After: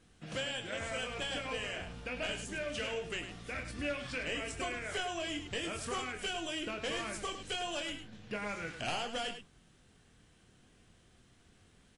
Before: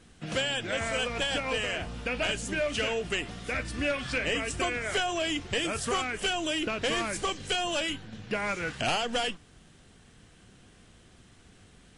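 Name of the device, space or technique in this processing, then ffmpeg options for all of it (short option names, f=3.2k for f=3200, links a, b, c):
slapback doubling: -filter_complex "[0:a]asplit=3[a][b][c];[b]adelay=24,volume=-8dB[d];[c]adelay=103,volume=-9dB[e];[a][d][e]amix=inputs=3:normalize=0,volume=-9dB"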